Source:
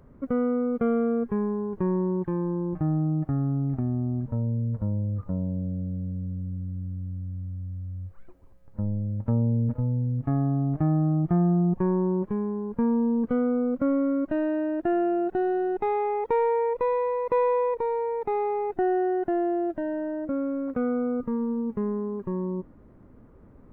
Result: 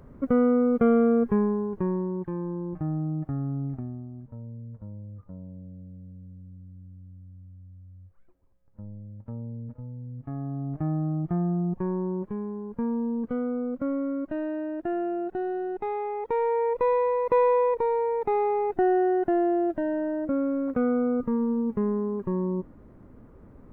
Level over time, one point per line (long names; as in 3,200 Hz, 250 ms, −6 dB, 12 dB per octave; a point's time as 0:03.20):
0:01.35 +4 dB
0:02.10 −4 dB
0:03.66 −4 dB
0:04.10 −13 dB
0:09.96 −13 dB
0:10.87 −4.5 dB
0:16.15 −4.5 dB
0:16.89 +2 dB